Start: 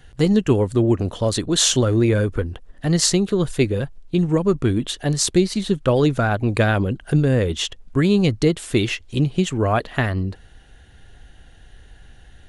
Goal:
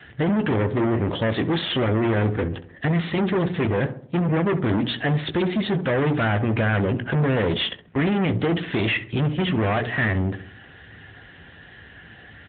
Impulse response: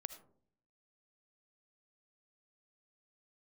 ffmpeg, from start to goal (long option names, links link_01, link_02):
-filter_complex "[0:a]bandreject=frequency=60:width_type=h:width=6,bandreject=frequency=120:width_type=h:width=6,bandreject=frequency=180:width_type=h:width=6,bandreject=frequency=240:width_type=h:width=6,bandreject=frequency=300:width_type=h:width=6,bandreject=frequency=360:width_type=h:width=6,bandreject=frequency=420:width_type=h:width=6,asplit=2[link_01][link_02];[link_02]adelay=18,volume=-11dB[link_03];[link_01][link_03]amix=inputs=2:normalize=0,adynamicequalizer=threshold=0.0158:dfrequency=100:dqfactor=7.8:tfrequency=100:tqfactor=7.8:attack=5:release=100:ratio=0.375:range=2:mode=cutabove:tftype=bell,asettb=1/sr,asplit=3[link_04][link_05][link_06];[link_04]atrim=end=1.994[link_07];[link_05]atrim=start=1.99:end=4.35,asetpts=PTS-STARTPTS,afade=type=in:duration=0.004:curve=qsin,afade=type=out:start_time=2.356:duration=0.004:curve=qsin,bandreject=frequency=1400:width=7.6[link_08];[link_06]atrim=start=4.346[link_09];[link_07][link_08]acrossfade=duration=0.004:curve1=hsin:curve2=qsin[link_10];[link_10][link_09]acrossfade=duration=0.004:curve1=qsin:curve2=hsin,alimiter=limit=-13dB:level=0:latency=1:release=17,asoftclip=type=hard:threshold=-25dB,equalizer=frequency=1900:width_type=o:width=0.65:gain=7.5,asplit=2[link_11][link_12];[link_12]adelay=66,lowpass=frequency=1200:poles=1,volume=-11dB,asplit=2[link_13][link_14];[link_14]adelay=66,lowpass=frequency=1200:poles=1,volume=0.5,asplit=2[link_15][link_16];[link_16]adelay=66,lowpass=frequency=1200:poles=1,volume=0.5,asplit=2[link_17][link_18];[link_18]adelay=66,lowpass=frequency=1200:poles=1,volume=0.5,asplit=2[link_19][link_20];[link_20]adelay=66,lowpass=frequency=1200:poles=1,volume=0.5[link_21];[link_11][link_13][link_15][link_17][link_19][link_21]amix=inputs=6:normalize=0,asoftclip=type=tanh:threshold=-23dB,volume=7.5dB" -ar 8000 -c:a libopencore_amrnb -b:a 10200